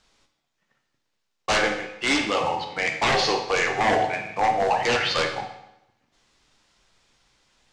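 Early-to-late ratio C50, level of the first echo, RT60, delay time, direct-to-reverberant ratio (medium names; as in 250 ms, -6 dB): 8.0 dB, no echo, 0.85 s, no echo, 4.0 dB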